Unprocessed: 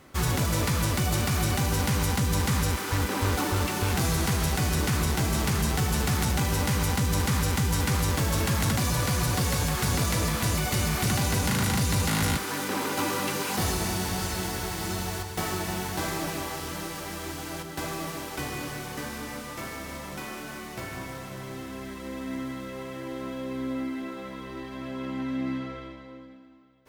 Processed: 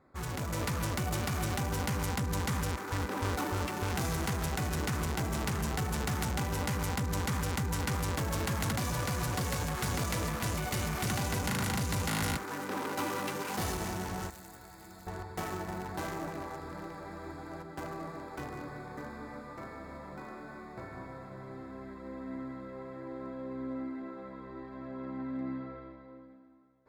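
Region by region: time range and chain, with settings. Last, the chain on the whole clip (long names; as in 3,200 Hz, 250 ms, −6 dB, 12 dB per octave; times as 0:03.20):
0:14.30–0:15.07: first-order pre-emphasis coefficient 0.8 + double-tracking delay 15 ms −6.5 dB
whole clip: adaptive Wiener filter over 15 samples; low-shelf EQ 360 Hz −4.5 dB; automatic gain control gain up to 5 dB; level −8.5 dB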